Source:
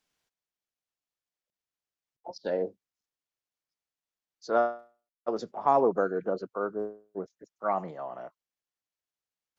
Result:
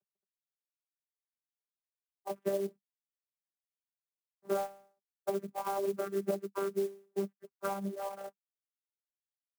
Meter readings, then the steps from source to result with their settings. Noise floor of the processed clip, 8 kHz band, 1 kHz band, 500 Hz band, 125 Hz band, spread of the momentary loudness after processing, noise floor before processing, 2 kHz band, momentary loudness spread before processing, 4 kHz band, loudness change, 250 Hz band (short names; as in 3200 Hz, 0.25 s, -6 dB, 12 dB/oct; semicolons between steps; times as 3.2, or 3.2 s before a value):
under -85 dBFS, n/a, -10.0 dB, -5.0 dB, -0.5 dB, 9 LU, under -85 dBFS, -7.5 dB, 20 LU, -1.5 dB, -6.0 dB, -3.5 dB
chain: CVSD 16 kbps; reverb removal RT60 1.4 s; comb 7.2 ms, depth 52%; compressor 10:1, threshold -34 dBFS, peak gain reduction 16.5 dB; low-pass opened by the level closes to 550 Hz, open at -37 dBFS; vocoder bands 16, saw 197 Hz; clock jitter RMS 0.035 ms; gain +5.5 dB